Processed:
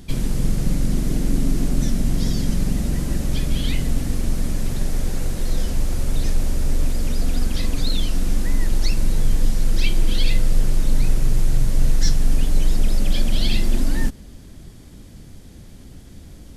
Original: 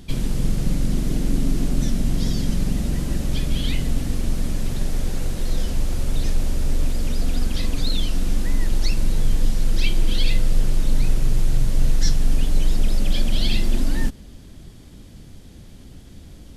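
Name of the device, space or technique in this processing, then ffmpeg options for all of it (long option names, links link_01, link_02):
exciter from parts: -filter_complex "[0:a]asplit=2[link_01][link_02];[link_02]highpass=2300,asoftclip=type=tanh:threshold=-30.5dB,highpass=frequency=2100:width=0.5412,highpass=frequency=2100:width=1.3066,volume=-11dB[link_03];[link_01][link_03]amix=inputs=2:normalize=0,volume=1dB"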